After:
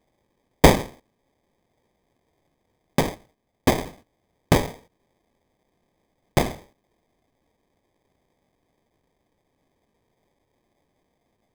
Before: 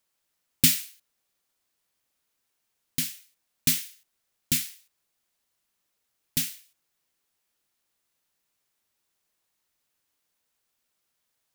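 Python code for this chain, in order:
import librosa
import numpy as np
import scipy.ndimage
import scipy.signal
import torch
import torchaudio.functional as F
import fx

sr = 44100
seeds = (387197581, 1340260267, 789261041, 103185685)

y = fx.lowpass(x, sr, hz=fx.line((3.14, 5300.0), (3.77, 11000.0)), slope=12, at=(3.14, 3.77), fade=0.02)
y = fx.sample_hold(y, sr, seeds[0], rate_hz=1400.0, jitter_pct=0)
y = y * 10.0 ** (7.0 / 20.0)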